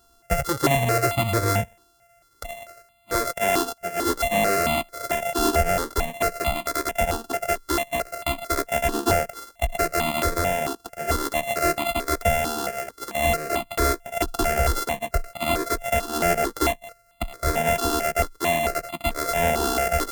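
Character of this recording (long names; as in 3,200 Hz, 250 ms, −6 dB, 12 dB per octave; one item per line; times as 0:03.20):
a buzz of ramps at a fixed pitch in blocks of 64 samples
notches that jump at a steady rate 4.5 Hz 590–1,600 Hz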